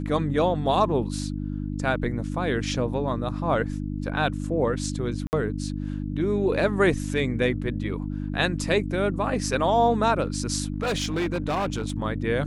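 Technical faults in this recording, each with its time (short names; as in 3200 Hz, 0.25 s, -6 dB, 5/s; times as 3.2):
hum 50 Hz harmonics 6 -30 dBFS
5.27–5.33 gap 59 ms
10.72–11.92 clipped -22 dBFS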